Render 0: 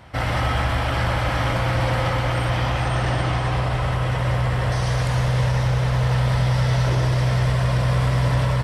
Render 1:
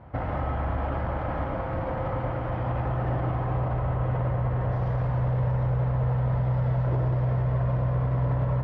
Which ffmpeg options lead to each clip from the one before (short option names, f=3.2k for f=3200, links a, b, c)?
-af "alimiter=limit=-17dB:level=0:latency=1:release=54,lowpass=1k,bandreject=f=60.03:t=h:w=4,bandreject=f=120.06:t=h:w=4,bandreject=f=180.09:t=h:w=4,bandreject=f=240.12:t=h:w=4,bandreject=f=300.15:t=h:w=4,bandreject=f=360.18:t=h:w=4,bandreject=f=420.21:t=h:w=4,bandreject=f=480.24:t=h:w=4,bandreject=f=540.27:t=h:w=4,bandreject=f=600.3:t=h:w=4,bandreject=f=660.33:t=h:w=4,bandreject=f=720.36:t=h:w=4,bandreject=f=780.39:t=h:w=4,bandreject=f=840.42:t=h:w=4,bandreject=f=900.45:t=h:w=4,bandreject=f=960.48:t=h:w=4,bandreject=f=1.02051k:t=h:w=4,bandreject=f=1.08054k:t=h:w=4,bandreject=f=1.14057k:t=h:w=4,bandreject=f=1.2006k:t=h:w=4,bandreject=f=1.26063k:t=h:w=4,bandreject=f=1.32066k:t=h:w=4,bandreject=f=1.38069k:t=h:w=4,bandreject=f=1.44072k:t=h:w=4,bandreject=f=1.50075k:t=h:w=4,bandreject=f=1.56078k:t=h:w=4,bandreject=f=1.62081k:t=h:w=4,bandreject=f=1.68084k:t=h:w=4,bandreject=f=1.74087k:t=h:w=4,bandreject=f=1.8009k:t=h:w=4,bandreject=f=1.86093k:t=h:w=4,bandreject=f=1.92096k:t=h:w=4,bandreject=f=1.98099k:t=h:w=4,bandreject=f=2.04102k:t=h:w=4,bandreject=f=2.10105k:t=h:w=4"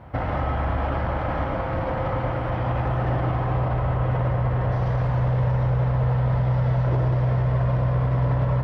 -af "highshelf=f=2.8k:g=8.5,volume=3.5dB"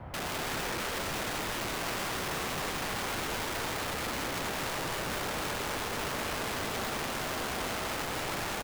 -filter_complex "[0:a]acrossover=split=420|880|1900[a][b][c][d];[a]acompressor=threshold=-27dB:ratio=4[e];[b]acompressor=threshold=-40dB:ratio=4[f];[c]acompressor=threshold=-47dB:ratio=4[g];[d]acompressor=threshold=-56dB:ratio=4[h];[e][f][g][h]amix=inputs=4:normalize=0,aeval=exprs='(mod(33.5*val(0)+1,2)-1)/33.5':c=same,aecho=1:1:211:0.531"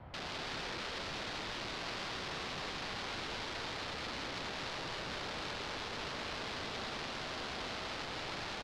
-af "lowpass=f=4.4k:t=q:w=1.9,volume=-8dB"